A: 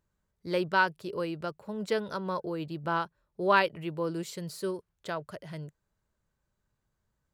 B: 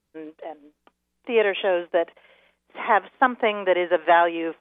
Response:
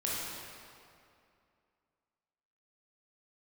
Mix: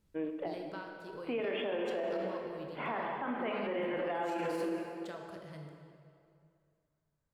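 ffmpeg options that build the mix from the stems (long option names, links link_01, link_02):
-filter_complex "[0:a]acompressor=threshold=-34dB:ratio=10,volume=-13dB,asplit=3[link_01][link_02][link_03];[link_02]volume=-3dB[link_04];[1:a]lowshelf=frequency=270:gain=11,alimiter=limit=-13.5dB:level=0:latency=1,volume=-5dB,asplit=2[link_05][link_06];[link_06]volume=-9.5dB[link_07];[link_03]apad=whole_len=202942[link_08];[link_05][link_08]sidechaincompress=threshold=-57dB:ratio=8:attack=16:release=1210[link_09];[2:a]atrim=start_sample=2205[link_10];[link_04][link_07]amix=inputs=2:normalize=0[link_11];[link_11][link_10]afir=irnorm=-1:irlink=0[link_12];[link_01][link_09][link_12]amix=inputs=3:normalize=0,alimiter=level_in=3.5dB:limit=-24dB:level=0:latency=1:release=37,volume=-3.5dB"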